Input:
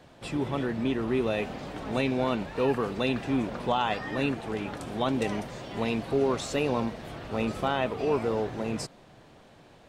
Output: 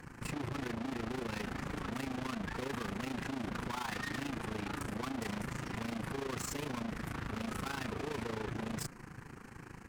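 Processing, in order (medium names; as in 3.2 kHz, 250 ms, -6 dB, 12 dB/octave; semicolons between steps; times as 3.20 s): static phaser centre 1.5 kHz, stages 4; valve stage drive 48 dB, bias 0.6; AM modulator 27 Hz, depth 65%; trim +13.5 dB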